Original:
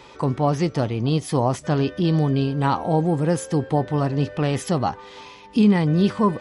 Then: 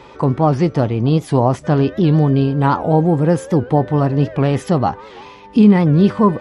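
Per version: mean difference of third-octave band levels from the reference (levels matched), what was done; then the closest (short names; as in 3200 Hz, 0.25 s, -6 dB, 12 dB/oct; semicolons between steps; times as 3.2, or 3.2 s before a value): 2.5 dB: high shelf 2800 Hz -11 dB; record warp 78 rpm, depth 160 cents; gain +6.5 dB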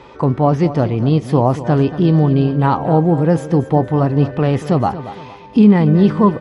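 4.0 dB: LPF 1400 Hz 6 dB/oct; feedback echo 0.232 s, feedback 34%, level -13.5 dB; gain +7 dB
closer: first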